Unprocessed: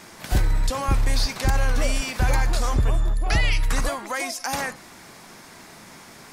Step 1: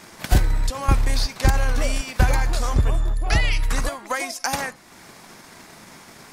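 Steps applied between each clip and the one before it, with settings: transient shaper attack +7 dB, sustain -5 dB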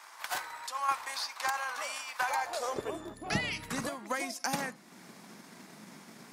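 peaking EQ 130 Hz +2.5 dB 0.77 oct; high-pass sweep 1 kHz -> 200 Hz, 2.21–3.30 s; trim -9 dB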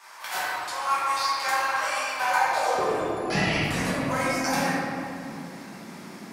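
reverberation RT60 2.6 s, pre-delay 5 ms, DRR -10.5 dB; trim -1.5 dB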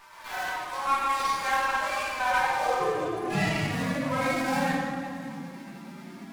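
harmonic-percussive separation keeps harmonic; sliding maximum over 5 samples

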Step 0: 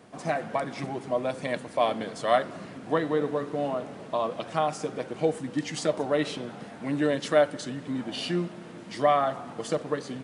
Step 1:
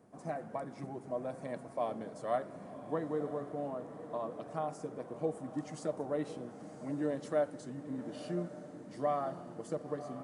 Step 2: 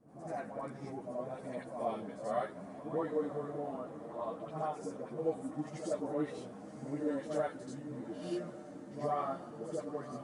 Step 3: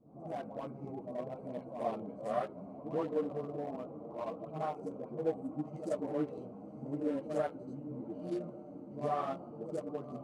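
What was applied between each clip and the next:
peaking EQ 3.2 kHz -14.5 dB 2 oct; on a send: echo that smears into a reverb 1017 ms, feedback 46%, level -12 dB; on the sum: trim -8.5 dB
phase dispersion highs, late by 86 ms, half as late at 850 Hz; reverse echo 83 ms -8 dB; three-phase chorus; trim +2.5 dB
local Wiener filter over 25 samples; trim +1 dB

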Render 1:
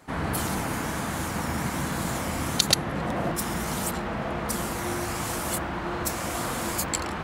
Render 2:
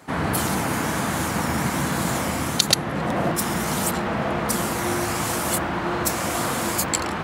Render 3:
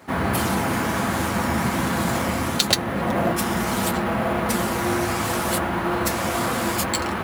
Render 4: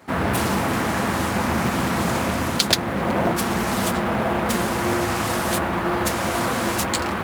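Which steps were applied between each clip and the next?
high-pass 85 Hz; in parallel at +2 dB: gain riding 0.5 s; on the sum: trim -2 dB
in parallel at -5.5 dB: sample-rate reducer 12 kHz; on the sum: comb of notches 150 Hz; trim -1 dB
in parallel at -10 dB: bit crusher 6-bit; on the sum: loudspeaker Doppler distortion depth 0.53 ms; trim -1.5 dB

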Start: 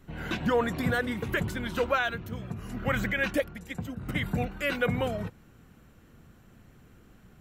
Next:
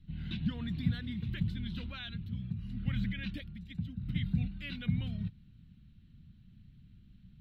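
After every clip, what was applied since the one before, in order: FFT filter 190 Hz 0 dB, 490 Hz -30 dB, 1.2 kHz -25 dB, 3.9 kHz -3 dB, 6.6 kHz -28 dB, 11 kHz -26 dB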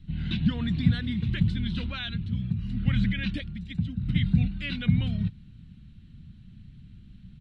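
resampled via 22.05 kHz; trim +9 dB

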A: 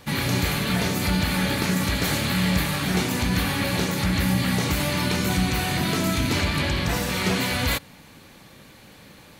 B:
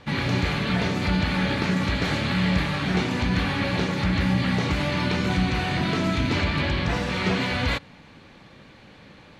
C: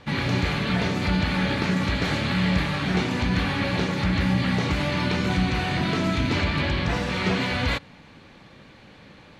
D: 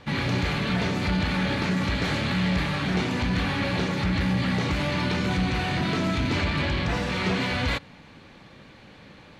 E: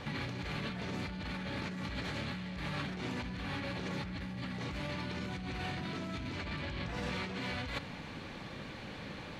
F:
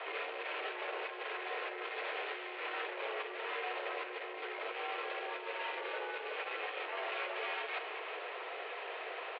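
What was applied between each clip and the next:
low-pass 3.8 kHz 12 dB/octave
no audible change
saturation -17 dBFS, distortion -18 dB
compressor with a negative ratio -34 dBFS, ratio -1; trim -5 dB
saturation -38.5 dBFS, distortion -13 dB; delay 371 ms -11.5 dB; mistuned SSB +180 Hz 270–3000 Hz; trim +6 dB

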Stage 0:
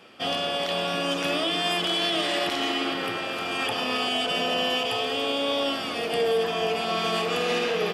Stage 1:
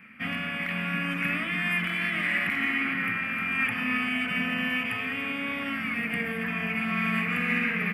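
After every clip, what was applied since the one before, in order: FFT filter 140 Hz 0 dB, 230 Hz +7 dB, 350 Hz -18 dB, 750 Hz -17 dB, 2.2 kHz +10 dB, 3.4 kHz -21 dB, 6.2 kHz -24 dB, 12 kHz -4 dB; trim +1.5 dB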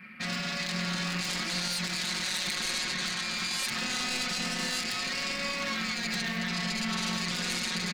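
self-modulated delay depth 0.37 ms; comb 5.5 ms, depth 76%; peak limiter -22 dBFS, peak gain reduction 9 dB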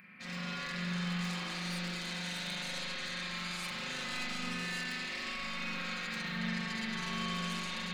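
upward compressor, threshold -42 dBFS; feedback comb 520 Hz, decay 0.16 s, harmonics all, mix 60%; spring tank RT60 3.1 s, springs 40 ms, chirp 30 ms, DRR -7 dB; trim -6 dB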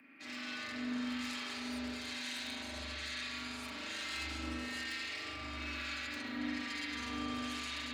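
frequency shift +71 Hz; harmonic tremolo 1.1 Hz, depth 50%, crossover 1.2 kHz; trim -1 dB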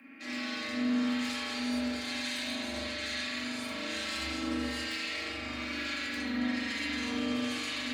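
simulated room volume 290 m³, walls furnished, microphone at 2.2 m; trim +2.5 dB

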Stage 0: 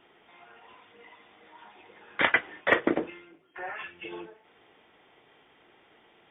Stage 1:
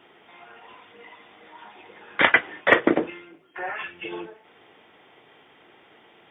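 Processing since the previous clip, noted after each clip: high-pass 76 Hz; trim +6 dB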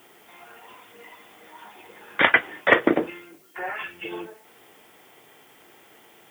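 added noise blue -59 dBFS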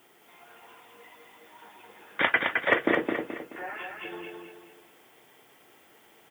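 feedback delay 214 ms, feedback 40%, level -4 dB; trim -6.5 dB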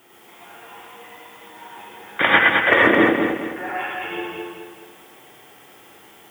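gated-style reverb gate 150 ms rising, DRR -3 dB; trim +5.5 dB

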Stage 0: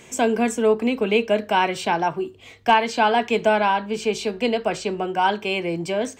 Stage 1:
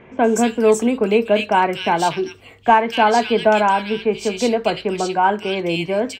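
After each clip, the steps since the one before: bands offset in time lows, highs 240 ms, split 2.3 kHz; trim +4 dB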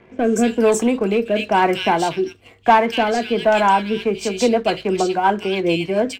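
waveshaping leveller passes 1; rotary cabinet horn 1 Hz, later 7 Hz, at 3.54 s; on a send at -14 dB: reverberation RT60 0.20 s, pre-delay 3 ms; on the sum: trim -1 dB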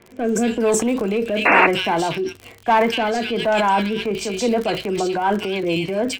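crackle 55 per s -28 dBFS; transient shaper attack -3 dB, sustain +7 dB; painted sound noise, 1.45–1.67 s, 250–2800 Hz -11 dBFS; trim -2.5 dB

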